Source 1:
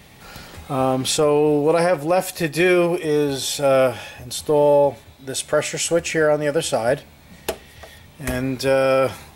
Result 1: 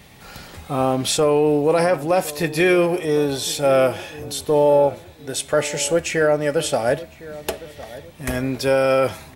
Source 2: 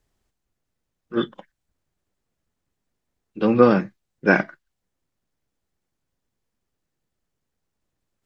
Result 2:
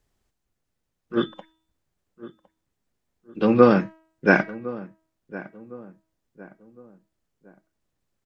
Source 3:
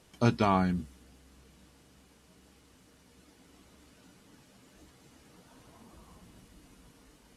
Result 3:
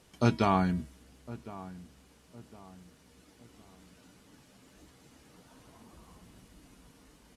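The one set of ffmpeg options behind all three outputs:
-filter_complex "[0:a]bandreject=f=320.5:t=h:w=4,bandreject=f=641:t=h:w=4,bandreject=f=961.5:t=h:w=4,bandreject=f=1.282k:t=h:w=4,bandreject=f=1.6025k:t=h:w=4,bandreject=f=1.923k:t=h:w=4,bandreject=f=2.2435k:t=h:w=4,bandreject=f=2.564k:t=h:w=4,bandreject=f=2.8845k:t=h:w=4,bandreject=f=3.205k:t=h:w=4,bandreject=f=3.5255k:t=h:w=4,bandreject=f=3.846k:t=h:w=4,bandreject=f=4.1665k:t=h:w=4,asplit=2[a][b];[b]adelay=1059,lowpass=f=1.4k:p=1,volume=-17dB,asplit=2[c][d];[d]adelay=1059,lowpass=f=1.4k:p=1,volume=0.4,asplit=2[e][f];[f]adelay=1059,lowpass=f=1.4k:p=1,volume=0.4[g];[c][e][g]amix=inputs=3:normalize=0[h];[a][h]amix=inputs=2:normalize=0"

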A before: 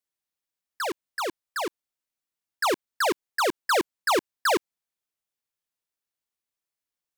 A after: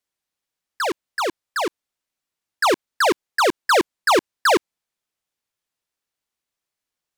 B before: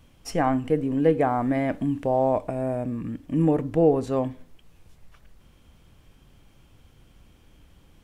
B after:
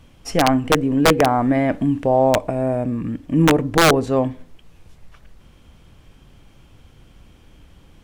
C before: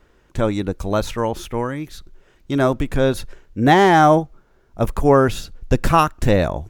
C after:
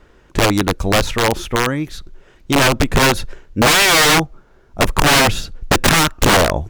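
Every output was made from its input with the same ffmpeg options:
-af "aeval=exprs='(mod(4.22*val(0)+1,2)-1)/4.22':c=same,highshelf=f=11k:g=-8,volume=6.5dB"

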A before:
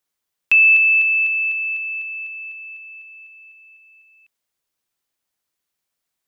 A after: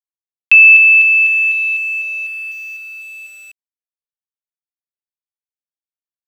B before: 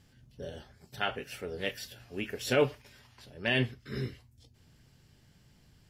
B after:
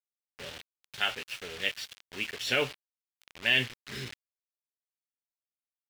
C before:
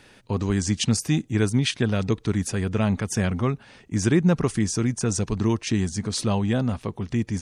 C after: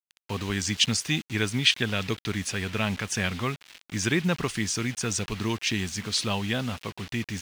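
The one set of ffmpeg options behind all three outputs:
-af "acrusher=bits=6:mix=0:aa=0.000001,equalizer=f=2.9k:w=0.51:g=14.5,volume=-7.5dB"

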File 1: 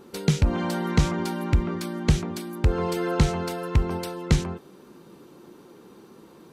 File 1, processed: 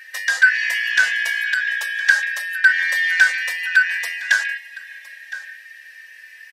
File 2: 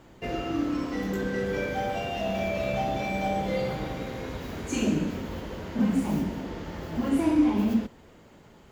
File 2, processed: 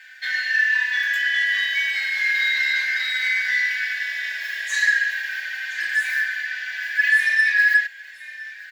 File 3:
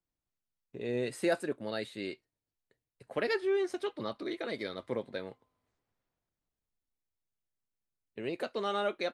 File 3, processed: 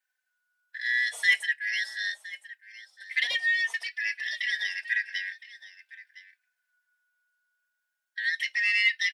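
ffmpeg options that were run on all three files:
-filter_complex "[0:a]afftfilt=real='real(if(lt(b,272),68*(eq(floor(b/68),0)*3+eq(floor(b/68),1)*0+eq(floor(b/68),2)*1+eq(floor(b/68),3)*2)+mod(b,68),b),0)':imag='imag(if(lt(b,272),68*(eq(floor(b/68),0)*3+eq(floor(b/68),1)*0+eq(floor(b/68),2)*1+eq(floor(b/68),3)*2)+mod(b,68),b),0)':win_size=2048:overlap=0.75,highpass=f=560:w=0.5412,highpass=f=560:w=1.3066,asplit=2[a][b];[b]asoftclip=type=tanh:threshold=-23dB,volume=-4dB[c];[a][c]amix=inputs=2:normalize=0,aecho=1:1:1013:0.133,asplit=2[d][e];[e]adelay=3.4,afreqshift=-0.34[f];[d][f]amix=inputs=2:normalize=1,volume=5.5dB"

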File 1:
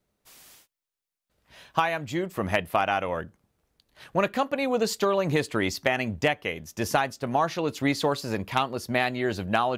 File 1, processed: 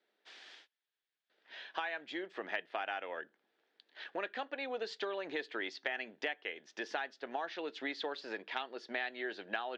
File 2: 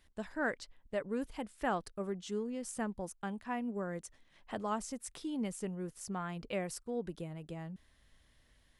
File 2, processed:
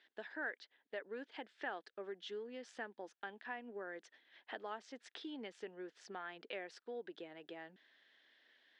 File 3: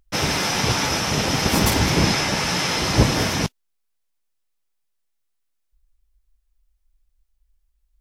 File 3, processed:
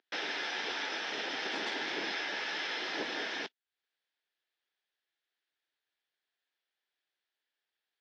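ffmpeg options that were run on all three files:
-af "highpass=f=330:w=0.5412,highpass=f=330:w=1.3066,equalizer=f=560:t=q:w=4:g=-4,equalizer=f=1.1k:t=q:w=4:g=-7,equalizer=f=1.7k:t=q:w=4:g=8,equalizer=f=3.4k:t=q:w=4:g=5,lowpass=f=4.5k:w=0.5412,lowpass=f=4.5k:w=1.3066,acompressor=threshold=-46dB:ratio=2"

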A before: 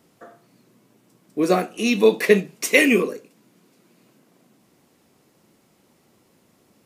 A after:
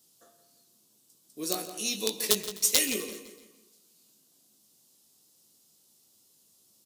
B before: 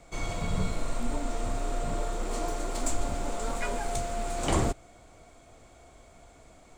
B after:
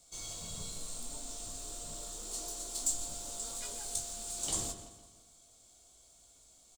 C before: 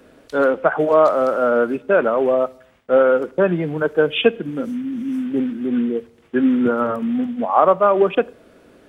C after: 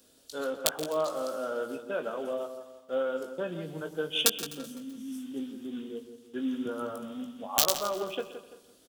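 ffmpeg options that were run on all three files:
-filter_complex "[0:a]aeval=exprs='(mod(1.5*val(0)+1,2)-1)/1.5':c=same,asplit=2[a][b];[b]adelay=19,volume=-8dB[c];[a][c]amix=inputs=2:normalize=0,asplit=2[d][e];[e]adelay=169,lowpass=f=2.6k:p=1,volume=-10dB,asplit=2[f][g];[g]adelay=169,lowpass=f=2.6k:p=1,volume=0.4,asplit=2[h][i];[i]adelay=169,lowpass=f=2.6k:p=1,volume=0.4,asplit=2[j][k];[k]adelay=169,lowpass=f=2.6k:p=1,volume=0.4[l];[f][h][j][l]amix=inputs=4:normalize=0[m];[d][m]amix=inputs=2:normalize=0,aexciter=amount=6.1:drive=8:freq=3.2k,asplit=2[n][o];[o]aecho=0:1:127|254|381|508|635:0.126|0.0705|0.0395|0.0221|0.0124[p];[n][p]amix=inputs=2:normalize=0,volume=-18dB"

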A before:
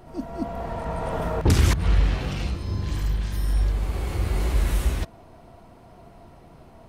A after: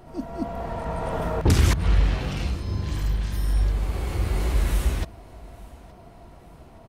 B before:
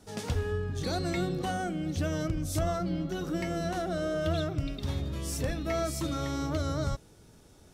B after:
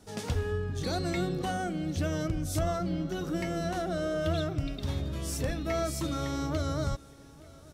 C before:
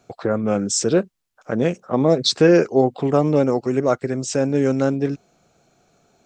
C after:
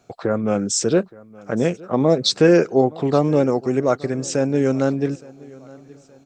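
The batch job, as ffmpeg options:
-af "aecho=1:1:870|1740|2610:0.075|0.0322|0.0139"

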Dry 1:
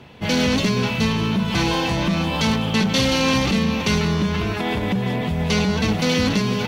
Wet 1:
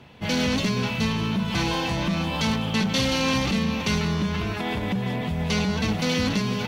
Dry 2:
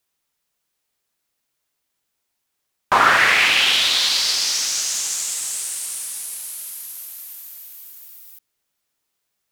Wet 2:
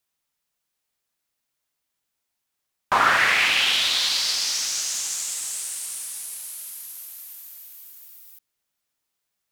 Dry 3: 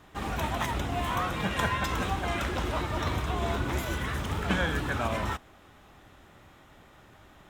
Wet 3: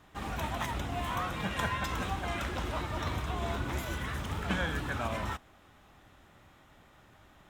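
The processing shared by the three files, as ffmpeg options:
-af "equalizer=f=400:w=2:g=-2.5,volume=-4dB"

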